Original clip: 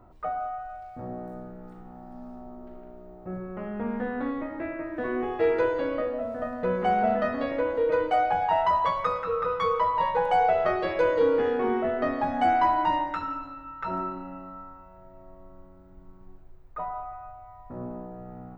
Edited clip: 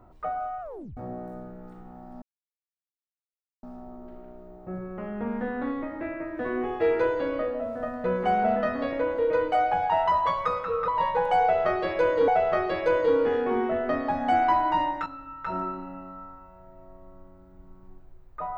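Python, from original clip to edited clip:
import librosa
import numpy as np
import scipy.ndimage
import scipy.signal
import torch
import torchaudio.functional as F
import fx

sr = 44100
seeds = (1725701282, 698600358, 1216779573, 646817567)

y = fx.edit(x, sr, fx.tape_stop(start_s=0.61, length_s=0.36),
    fx.insert_silence(at_s=2.22, length_s=1.41),
    fx.cut(start_s=9.47, length_s=0.41),
    fx.repeat(start_s=10.41, length_s=0.87, count=2),
    fx.cut(start_s=13.19, length_s=0.25), tone=tone)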